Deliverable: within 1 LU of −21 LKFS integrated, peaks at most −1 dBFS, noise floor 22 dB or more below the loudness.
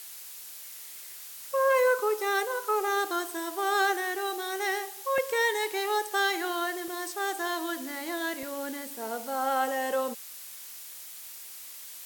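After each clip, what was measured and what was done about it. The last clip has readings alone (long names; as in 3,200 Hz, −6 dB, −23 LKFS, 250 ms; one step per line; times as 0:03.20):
number of dropouts 3; longest dropout 1.7 ms; background noise floor −44 dBFS; target noise floor −51 dBFS; integrated loudness −29.0 LKFS; sample peak −15.0 dBFS; target loudness −21.0 LKFS
→ repair the gap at 0:05.18/0:06.88/0:08.43, 1.7 ms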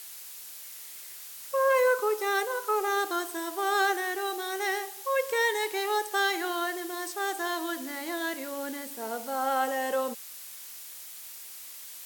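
number of dropouts 0; background noise floor −44 dBFS; target noise floor −51 dBFS
→ noise reduction from a noise print 7 dB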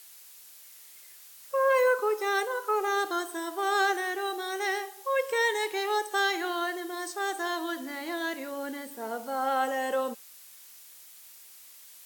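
background noise floor −51 dBFS; integrated loudness −29.0 LKFS; sample peak −15.0 dBFS; target loudness −21.0 LKFS
→ level +8 dB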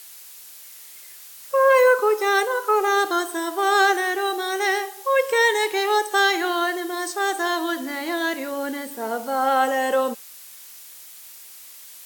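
integrated loudness −21.0 LKFS; sample peak −7.0 dBFS; background noise floor −43 dBFS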